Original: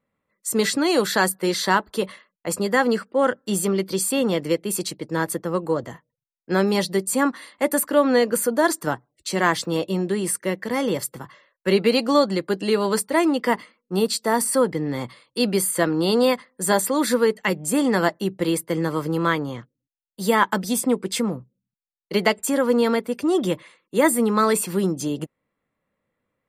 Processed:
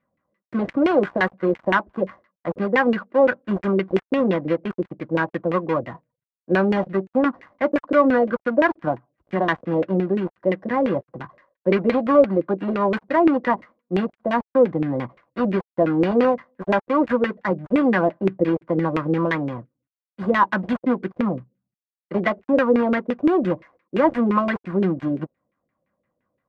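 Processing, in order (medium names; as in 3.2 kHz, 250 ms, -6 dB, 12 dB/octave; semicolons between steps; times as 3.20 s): dead-time distortion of 0.15 ms; in parallel at -3 dB: peak limiter -14 dBFS, peak gain reduction 9.5 dB; on the sum: comb of notches 440 Hz; LFO low-pass saw down 5.8 Hz 390–2400 Hz; trim -3 dB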